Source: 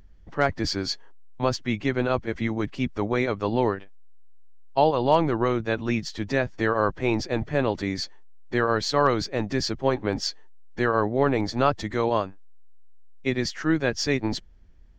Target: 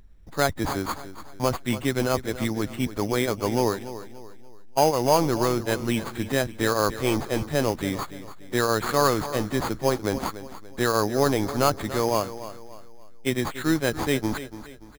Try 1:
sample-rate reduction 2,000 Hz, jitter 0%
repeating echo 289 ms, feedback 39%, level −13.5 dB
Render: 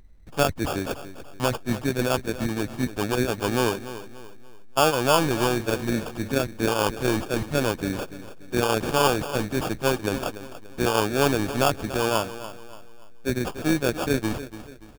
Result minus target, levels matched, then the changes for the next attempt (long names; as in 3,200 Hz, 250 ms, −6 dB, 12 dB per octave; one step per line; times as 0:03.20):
sample-rate reduction: distortion +8 dB
change: sample-rate reduction 5,600 Hz, jitter 0%